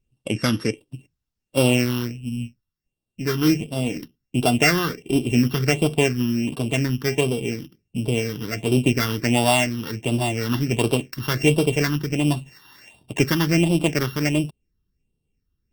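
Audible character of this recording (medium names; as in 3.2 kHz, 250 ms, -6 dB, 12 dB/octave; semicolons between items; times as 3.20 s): a buzz of ramps at a fixed pitch in blocks of 16 samples; phasing stages 6, 1.4 Hz, lowest notch 610–1900 Hz; Opus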